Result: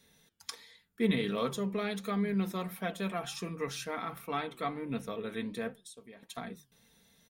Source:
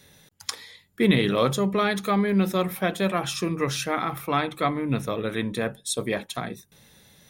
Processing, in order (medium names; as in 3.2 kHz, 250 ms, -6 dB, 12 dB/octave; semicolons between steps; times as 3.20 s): comb 4.4 ms, depth 51%; 5.80–6.23 s: compression 12:1, threshold -37 dBFS, peak gain reduction 17 dB; flange 1.4 Hz, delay 3.7 ms, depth 5.5 ms, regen +89%; trim -7 dB